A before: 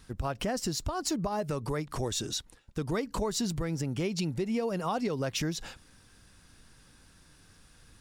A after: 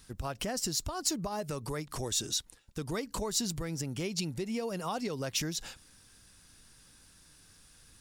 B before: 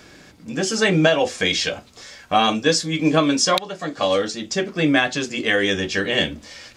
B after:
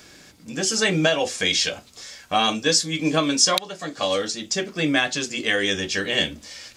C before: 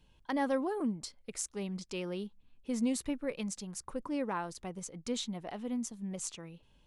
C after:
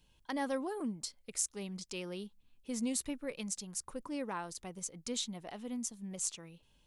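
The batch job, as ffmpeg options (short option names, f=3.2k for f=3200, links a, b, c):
-af "highshelf=f=3.6k:g=10,volume=-4.5dB"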